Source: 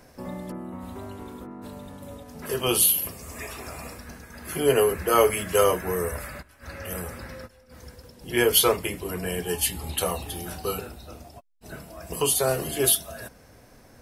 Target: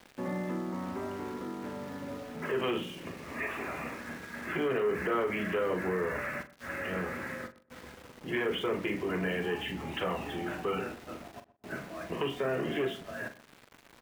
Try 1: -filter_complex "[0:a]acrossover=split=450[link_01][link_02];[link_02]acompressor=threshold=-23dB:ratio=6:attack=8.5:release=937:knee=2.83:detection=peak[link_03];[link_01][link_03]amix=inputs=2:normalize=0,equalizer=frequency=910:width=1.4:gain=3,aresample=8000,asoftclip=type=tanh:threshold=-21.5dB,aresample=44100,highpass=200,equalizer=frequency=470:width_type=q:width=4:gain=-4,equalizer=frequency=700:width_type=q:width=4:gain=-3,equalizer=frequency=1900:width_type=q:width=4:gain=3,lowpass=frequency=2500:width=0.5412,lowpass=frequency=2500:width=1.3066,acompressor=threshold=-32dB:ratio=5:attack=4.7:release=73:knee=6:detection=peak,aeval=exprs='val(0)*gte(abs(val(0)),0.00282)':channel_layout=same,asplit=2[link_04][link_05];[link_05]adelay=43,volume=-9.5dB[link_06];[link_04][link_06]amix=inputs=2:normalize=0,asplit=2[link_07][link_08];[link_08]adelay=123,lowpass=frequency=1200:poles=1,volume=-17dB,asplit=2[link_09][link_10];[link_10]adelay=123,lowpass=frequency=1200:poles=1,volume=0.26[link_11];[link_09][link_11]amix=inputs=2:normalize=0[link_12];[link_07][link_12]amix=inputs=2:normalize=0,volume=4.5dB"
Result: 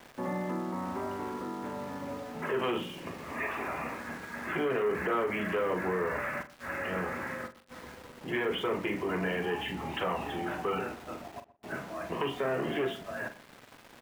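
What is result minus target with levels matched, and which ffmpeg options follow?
1,000 Hz band +2.5 dB
-filter_complex "[0:a]acrossover=split=450[link_01][link_02];[link_02]acompressor=threshold=-23dB:ratio=6:attack=8.5:release=937:knee=2.83:detection=peak[link_03];[link_01][link_03]amix=inputs=2:normalize=0,equalizer=frequency=910:width=1.4:gain=-3,aresample=8000,asoftclip=type=tanh:threshold=-21.5dB,aresample=44100,highpass=200,equalizer=frequency=470:width_type=q:width=4:gain=-4,equalizer=frequency=700:width_type=q:width=4:gain=-3,equalizer=frequency=1900:width_type=q:width=4:gain=3,lowpass=frequency=2500:width=0.5412,lowpass=frequency=2500:width=1.3066,acompressor=threshold=-32dB:ratio=5:attack=4.7:release=73:knee=6:detection=peak,aeval=exprs='val(0)*gte(abs(val(0)),0.00282)':channel_layout=same,asplit=2[link_04][link_05];[link_05]adelay=43,volume=-9.5dB[link_06];[link_04][link_06]amix=inputs=2:normalize=0,asplit=2[link_07][link_08];[link_08]adelay=123,lowpass=frequency=1200:poles=1,volume=-17dB,asplit=2[link_09][link_10];[link_10]adelay=123,lowpass=frequency=1200:poles=1,volume=0.26[link_11];[link_09][link_11]amix=inputs=2:normalize=0[link_12];[link_07][link_12]amix=inputs=2:normalize=0,volume=4.5dB"

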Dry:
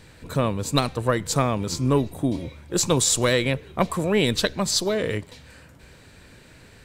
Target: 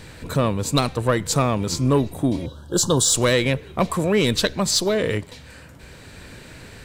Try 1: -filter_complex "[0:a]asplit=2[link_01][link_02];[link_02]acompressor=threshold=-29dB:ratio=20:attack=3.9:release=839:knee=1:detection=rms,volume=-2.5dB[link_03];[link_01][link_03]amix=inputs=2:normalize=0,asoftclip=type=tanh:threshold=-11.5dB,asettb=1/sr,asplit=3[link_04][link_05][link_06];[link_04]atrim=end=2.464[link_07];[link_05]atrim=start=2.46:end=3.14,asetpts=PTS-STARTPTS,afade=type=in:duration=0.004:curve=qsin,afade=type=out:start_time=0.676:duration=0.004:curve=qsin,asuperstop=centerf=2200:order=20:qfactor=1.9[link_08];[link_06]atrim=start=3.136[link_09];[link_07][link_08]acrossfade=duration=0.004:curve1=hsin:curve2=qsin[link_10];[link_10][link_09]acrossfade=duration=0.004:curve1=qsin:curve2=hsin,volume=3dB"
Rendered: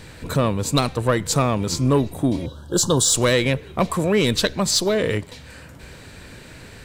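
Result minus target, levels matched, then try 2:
downward compressor: peak gain reduction −8 dB
-filter_complex "[0:a]asplit=2[link_01][link_02];[link_02]acompressor=threshold=-37.5dB:ratio=20:attack=3.9:release=839:knee=1:detection=rms,volume=-2.5dB[link_03];[link_01][link_03]amix=inputs=2:normalize=0,asoftclip=type=tanh:threshold=-11.5dB,asettb=1/sr,asplit=3[link_04][link_05][link_06];[link_04]atrim=end=2.464[link_07];[link_05]atrim=start=2.46:end=3.14,asetpts=PTS-STARTPTS,afade=type=in:duration=0.004:curve=qsin,afade=type=out:start_time=0.676:duration=0.004:curve=qsin,asuperstop=centerf=2200:order=20:qfactor=1.9[link_08];[link_06]atrim=start=3.136[link_09];[link_07][link_08]acrossfade=duration=0.004:curve1=hsin:curve2=qsin[link_10];[link_10][link_09]acrossfade=duration=0.004:curve1=qsin:curve2=hsin,volume=3dB"

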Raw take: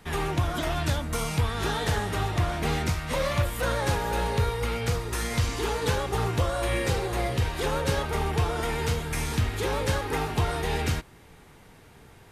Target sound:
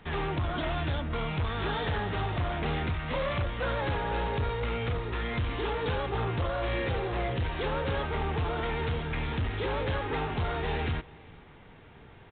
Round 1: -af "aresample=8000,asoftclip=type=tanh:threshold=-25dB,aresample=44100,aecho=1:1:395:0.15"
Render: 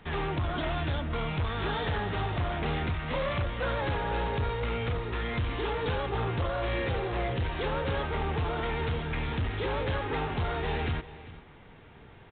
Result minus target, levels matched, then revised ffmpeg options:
echo-to-direct +7 dB
-af "aresample=8000,asoftclip=type=tanh:threshold=-25dB,aresample=44100,aecho=1:1:395:0.0668"

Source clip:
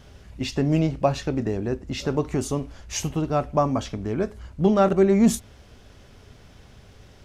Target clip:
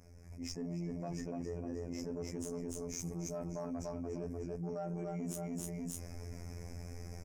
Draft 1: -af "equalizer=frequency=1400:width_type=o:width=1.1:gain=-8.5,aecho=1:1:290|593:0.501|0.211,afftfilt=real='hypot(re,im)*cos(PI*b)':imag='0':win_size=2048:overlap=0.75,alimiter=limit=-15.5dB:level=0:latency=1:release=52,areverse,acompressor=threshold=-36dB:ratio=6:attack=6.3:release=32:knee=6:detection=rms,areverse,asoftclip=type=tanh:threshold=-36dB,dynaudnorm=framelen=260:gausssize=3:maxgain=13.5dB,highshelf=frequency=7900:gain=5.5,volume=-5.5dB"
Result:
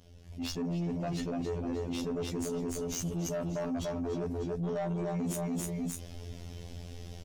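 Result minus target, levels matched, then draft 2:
downward compressor: peak gain reduction −10 dB; 4,000 Hz band +2.0 dB
-af "asuperstop=centerf=3500:order=20:qfactor=1.5,equalizer=frequency=1400:width_type=o:width=1.1:gain=-8.5,aecho=1:1:290|593:0.501|0.211,afftfilt=real='hypot(re,im)*cos(PI*b)':imag='0':win_size=2048:overlap=0.75,alimiter=limit=-15.5dB:level=0:latency=1:release=52,areverse,acompressor=threshold=-47.5dB:ratio=6:attack=6.3:release=32:knee=6:detection=rms,areverse,asoftclip=type=tanh:threshold=-36dB,dynaudnorm=framelen=260:gausssize=3:maxgain=13.5dB,highshelf=frequency=7900:gain=5.5,volume=-5.5dB"

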